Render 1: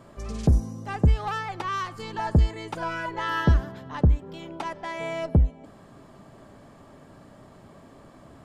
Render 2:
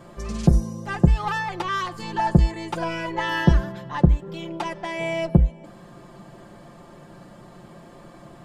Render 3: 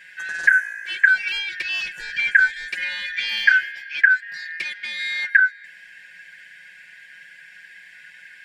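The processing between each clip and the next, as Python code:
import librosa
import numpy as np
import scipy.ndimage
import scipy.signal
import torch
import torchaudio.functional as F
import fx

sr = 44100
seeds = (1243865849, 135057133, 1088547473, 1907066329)

y1 = x + 0.7 * np.pad(x, (int(5.7 * sr / 1000.0), 0))[:len(x)]
y1 = y1 * librosa.db_to_amplitude(3.0)
y2 = fx.band_shuffle(y1, sr, order='4123')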